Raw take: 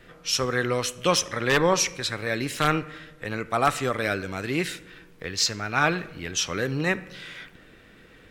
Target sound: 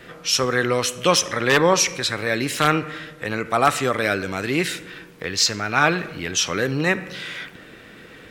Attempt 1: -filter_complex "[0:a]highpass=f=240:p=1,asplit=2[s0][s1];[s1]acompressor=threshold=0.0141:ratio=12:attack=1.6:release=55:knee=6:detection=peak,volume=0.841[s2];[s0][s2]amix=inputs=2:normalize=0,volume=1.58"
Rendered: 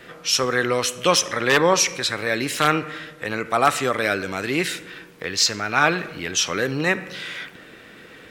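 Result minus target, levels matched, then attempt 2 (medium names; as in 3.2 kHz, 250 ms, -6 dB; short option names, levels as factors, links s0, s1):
125 Hz band -3.0 dB
-filter_complex "[0:a]highpass=f=120:p=1,asplit=2[s0][s1];[s1]acompressor=threshold=0.0141:ratio=12:attack=1.6:release=55:knee=6:detection=peak,volume=0.841[s2];[s0][s2]amix=inputs=2:normalize=0,volume=1.58"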